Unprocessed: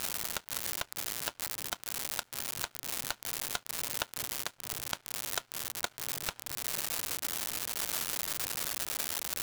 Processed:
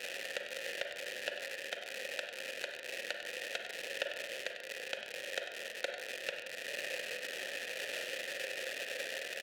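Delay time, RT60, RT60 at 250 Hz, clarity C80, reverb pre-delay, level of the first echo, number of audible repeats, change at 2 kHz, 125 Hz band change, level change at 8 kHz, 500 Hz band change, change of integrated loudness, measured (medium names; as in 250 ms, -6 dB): 97 ms, 0.90 s, 1.1 s, 6.0 dB, 36 ms, -10.0 dB, 1, +3.0 dB, under -15 dB, -13.0 dB, +6.5 dB, -5.5 dB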